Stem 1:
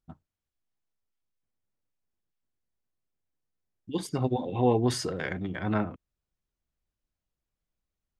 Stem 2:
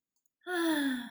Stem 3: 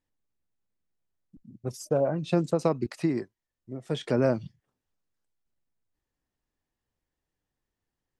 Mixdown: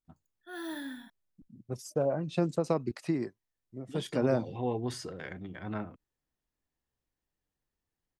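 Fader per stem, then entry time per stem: −9.0, −9.0, −4.0 decibels; 0.00, 0.00, 0.05 seconds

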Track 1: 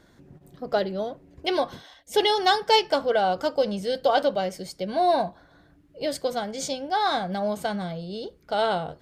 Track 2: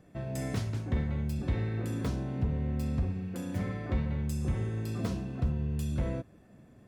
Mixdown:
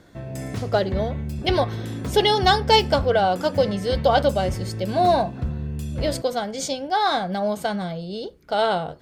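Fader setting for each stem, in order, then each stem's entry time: +3.0, +3.0 decibels; 0.00, 0.00 seconds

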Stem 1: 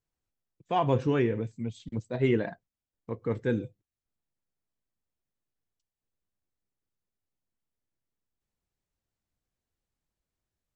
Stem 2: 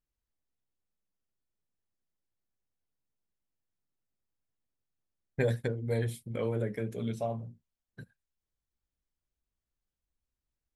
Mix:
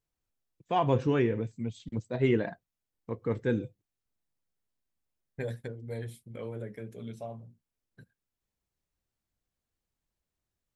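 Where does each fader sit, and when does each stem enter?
−0.5, −7.0 decibels; 0.00, 0.00 seconds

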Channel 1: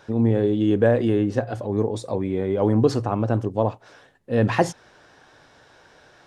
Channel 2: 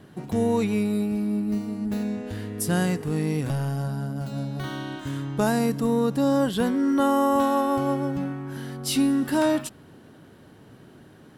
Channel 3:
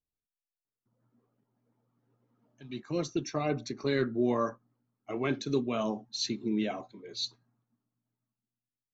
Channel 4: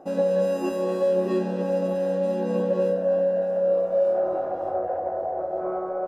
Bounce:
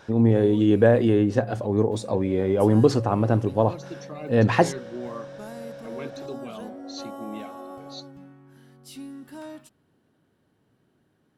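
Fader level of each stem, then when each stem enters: +1.0, −18.0, −7.5, −18.5 decibels; 0.00, 0.00, 0.75, 1.95 seconds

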